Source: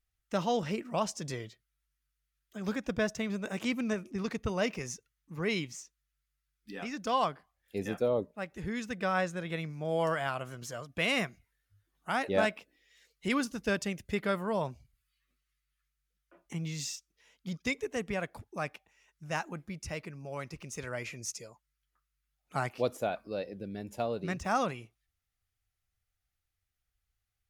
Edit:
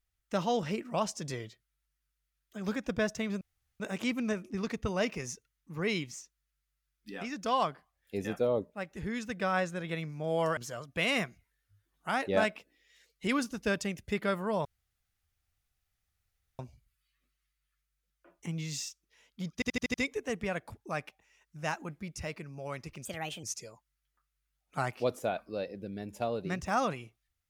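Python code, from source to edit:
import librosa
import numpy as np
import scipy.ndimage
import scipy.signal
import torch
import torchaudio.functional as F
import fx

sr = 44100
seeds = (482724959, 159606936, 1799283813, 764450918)

y = fx.edit(x, sr, fx.insert_room_tone(at_s=3.41, length_s=0.39),
    fx.cut(start_s=10.18, length_s=0.4),
    fx.insert_room_tone(at_s=14.66, length_s=1.94),
    fx.stutter(start_s=17.61, slice_s=0.08, count=6),
    fx.speed_span(start_s=20.72, length_s=0.49, speed=1.29), tone=tone)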